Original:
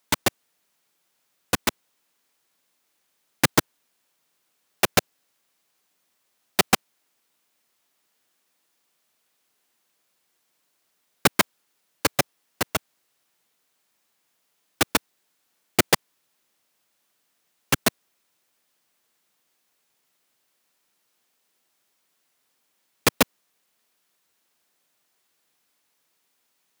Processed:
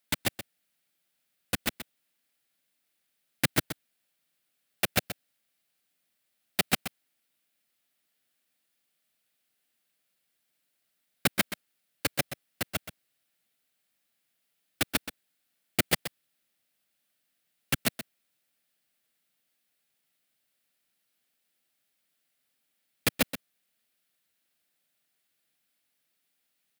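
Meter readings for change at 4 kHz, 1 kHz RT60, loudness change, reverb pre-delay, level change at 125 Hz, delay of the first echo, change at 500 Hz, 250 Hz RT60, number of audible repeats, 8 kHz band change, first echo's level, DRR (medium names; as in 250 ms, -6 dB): -6.0 dB, no reverb, -6.5 dB, no reverb, -4.5 dB, 127 ms, -9.0 dB, no reverb, 1, -7.5 dB, -11.5 dB, no reverb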